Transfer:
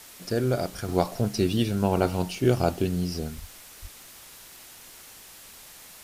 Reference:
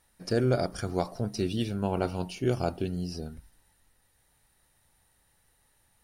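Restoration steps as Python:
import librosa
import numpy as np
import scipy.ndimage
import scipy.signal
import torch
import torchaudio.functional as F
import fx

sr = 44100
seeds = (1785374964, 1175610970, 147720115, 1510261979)

y = fx.highpass(x, sr, hz=140.0, slope=24, at=(3.4, 3.52), fade=0.02)
y = fx.highpass(y, sr, hz=140.0, slope=24, at=(3.81, 3.93), fade=0.02)
y = fx.noise_reduce(y, sr, print_start_s=4.91, print_end_s=5.41, reduce_db=21.0)
y = fx.fix_level(y, sr, at_s=0.88, step_db=-5.5)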